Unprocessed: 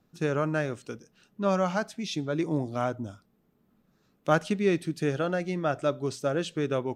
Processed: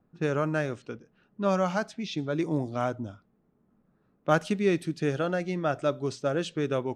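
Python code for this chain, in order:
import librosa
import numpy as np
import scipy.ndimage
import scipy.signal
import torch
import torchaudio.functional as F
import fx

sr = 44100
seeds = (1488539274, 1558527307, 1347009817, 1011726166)

y = fx.env_lowpass(x, sr, base_hz=1500.0, full_db=-23.5)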